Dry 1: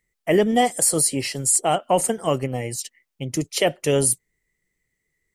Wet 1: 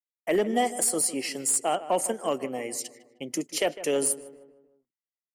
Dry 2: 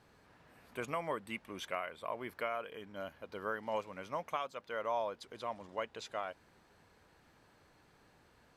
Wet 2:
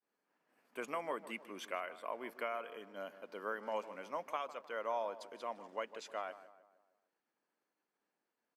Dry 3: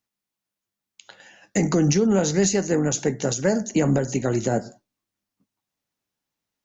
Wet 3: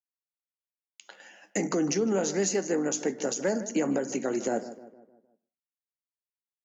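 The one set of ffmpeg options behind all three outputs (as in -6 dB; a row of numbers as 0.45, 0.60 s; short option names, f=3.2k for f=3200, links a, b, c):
-filter_complex "[0:a]highpass=f=220:w=0.5412,highpass=f=220:w=1.3066,agate=range=-33dB:threshold=-54dB:ratio=3:detection=peak,equalizer=f=3.8k:w=5.1:g=-6,asplit=2[a][b];[b]acompressor=threshold=-29dB:ratio=6,volume=-1dB[c];[a][c]amix=inputs=2:normalize=0,aeval=exprs='clip(val(0),-1,0.299)':c=same,asplit=2[d][e];[e]adelay=154,lowpass=f=1.9k:p=1,volume=-14dB,asplit=2[f][g];[g]adelay=154,lowpass=f=1.9k:p=1,volume=0.49,asplit=2[h][i];[i]adelay=154,lowpass=f=1.9k:p=1,volume=0.49,asplit=2[j][k];[k]adelay=154,lowpass=f=1.9k:p=1,volume=0.49,asplit=2[l][m];[m]adelay=154,lowpass=f=1.9k:p=1,volume=0.49[n];[f][h][j][l][n]amix=inputs=5:normalize=0[o];[d][o]amix=inputs=2:normalize=0,volume=-7.5dB"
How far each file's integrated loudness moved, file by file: -6.0, -2.0, -6.5 LU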